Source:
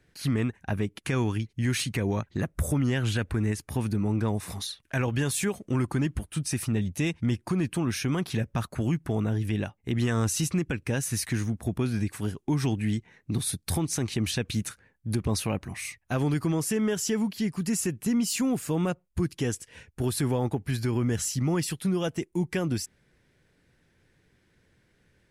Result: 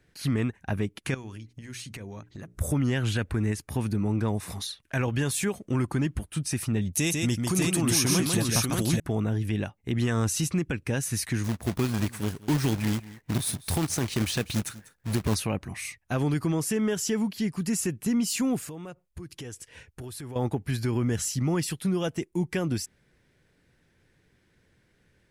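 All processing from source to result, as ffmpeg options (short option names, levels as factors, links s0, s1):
-filter_complex "[0:a]asettb=1/sr,asplit=3[s0][s1][s2];[s0]atrim=end=1.144[s3];[s1]atrim=start=1.14:end=2.61,asetpts=PTS-STARTPTS,afade=t=in:d=0.004:c=qsin,afade=t=out:st=1.466:d=0.004:c=qsin,equalizer=f=6300:w=1.1:g=4.5,acompressor=threshold=0.0158:ratio=10:attack=3.2:release=140:knee=1:detection=peak,bandreject=f=60:t=h:w=6,bandreject=f=120:t=h:w=6,bandreject=f=180:t=h:w=6,bandreject=f=240:t=h:w=6,bandreject=f=300:t=h:w=6,bandreject=f=360:t=h:w=6,bandreject=f=420:t=h:w=6[s4];[s2]atrim=start=2.606[s5];[s3][s4]acrossfade=d=0.004:c1=hsin:c2=qsin[s6];[s6][s5]acrossfade=d=0.004:c1=qsin:c2=hsin,asettb=1/sr,asplit=3[s7][s8][s9];[s7]atrim=end=6.934[s10];[s8]atrim=start=6.93:end=9,asetpts=PTS-STARTPTS,afade=t=in:d=0.004:c=qsin,afade=t=out:st=2.066:d=0.004:c=qsin,bass=f=250:g=-1,treble=f=4000:g=14,aecho=1:1:148|593:0.668|0.708,atrim=end_sample=91287[s11];[s9]atrim=start=8.996[s12];[s10][s11]acrossfade=d=0.004:c1=hsin:c2=qsin[s13];[s13][s12]acrossfade=d=0.004:c1=qsin:c2=hsin,asettb=1/sr,asplit=3[s14][s15][s16];[s14]atrim=end=11.444[s17];[s15]atrim=start=11.44:end=15.35,asetpts=PTS-STARTPTS,afade=t=in:d=0.004:c=qsin,afade=t=out:st=3.906:d=0.004:c=qsin,acrusher=bits=2:mode=log:mix=0:aa=0.000001,aecho=1:1:195:0.119,atrim=end_sample=172431[s18];[s16]atrim=start=15.346[s19];[s17][s18]acrossfade=d=0.004:c1=hsin:c2=qsin[s20];[s20][s19]acrossfade=d=0.004:c1=qsin:c2=hsin,asettb=1/sr,asplit=3[s21][s22][s23];[s21]atrim=end=18.644[s24];[s22]atrim=start=18.64:end=20.36,asetpts=PTS-STARTPTS,afade=t=in:d=0.004:c=qsin,afade=t=out:st=1.716:d=0.004:c=qsin,equalizer=f=210:t=o:w=0.58:g=-5.5,acompressor=threshold=0.0158:ratio=8:attack=3.2:release=140:knee=1:detection=peak[s25];[s23]atrim=start=20.356[s26];[s24][s25]acrossfade=d=0.004:c1=hsin:c2=qsin[s27];[s27][s26]acrossfade=d=0.004:c1=qsin:c2=hsin"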